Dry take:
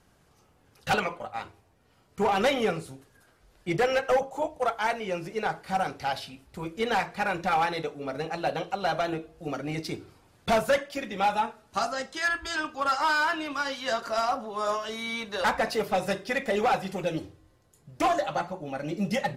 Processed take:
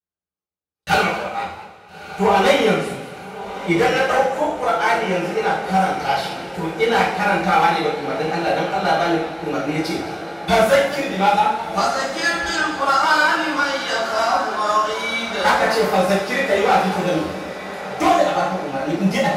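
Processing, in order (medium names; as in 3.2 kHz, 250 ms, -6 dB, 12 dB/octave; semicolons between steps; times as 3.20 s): high-pass 62 Hz; echo that smears into a reverb 1301 ms, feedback 60%, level -13 dB; gate -53 dBFS, range -44 dB; two-slope reverb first 0.55 s, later 2.5 s, from -20 dB, DRR -7.5 dB; modulated delay 211 ms, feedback 34%, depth 134 cents, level -15 dB; trim +1.5 dB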